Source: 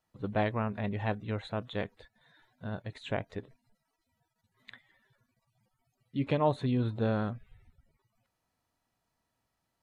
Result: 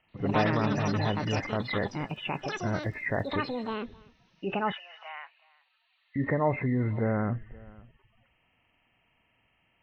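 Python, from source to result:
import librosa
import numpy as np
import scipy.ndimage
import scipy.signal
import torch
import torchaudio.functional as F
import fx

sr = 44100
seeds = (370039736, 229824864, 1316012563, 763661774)

p1 = fx.freq_compress(x, sr, knee_hz=1700.0, ratio=4.0)
p2 = fx.over_compress(p1, sr, threshold_db=-38.0, ratio=-1.0)
p3 = p1 + (p2 * 10.0 ** (0.0 / 20.0))
p4 = fx.air_absorb(p3, sr, metres=420.0, at=(0.65, 1.51))
p5 = fx.dmg_crackle(p4, sr, seeds[0], per_s=160.0, level_db=-51.0, at=(2.81, 3.26), fade=0.02)
p6 = p5 + fx.echo_single(p5, sr, ms=523, db=-23.5, dry=0)
p7 = fx.echo_pitch(p6, sr, ms=87, semitones=6, count=3, db_per_echo=-3.0)
y = fx.bessel_highpass(p7, sr, hz=1300.0, order=8, at=(4.72, 6.16))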